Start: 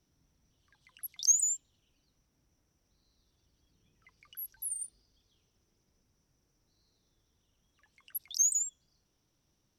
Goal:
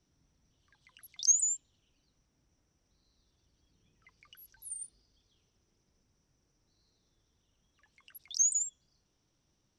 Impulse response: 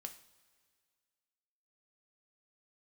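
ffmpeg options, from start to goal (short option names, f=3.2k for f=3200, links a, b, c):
-af "lowpass=f=8.7k:w=0.5412,lowpass=f=8.7k:w=1.3066"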